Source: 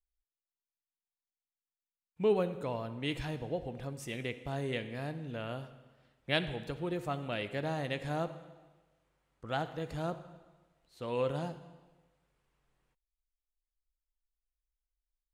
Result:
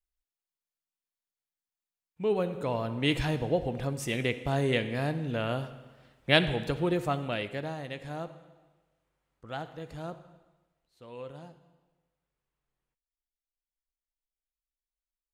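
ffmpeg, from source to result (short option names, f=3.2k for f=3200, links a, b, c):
-af "volume=8.5dB,afade=t=in:st=2.25:d=0.79:silence=0.334965,afade=t=out:st=6.81:d=0.96:silence=0.266073,afade=t=out:st=10.29:d=0.75:silence=0.446684"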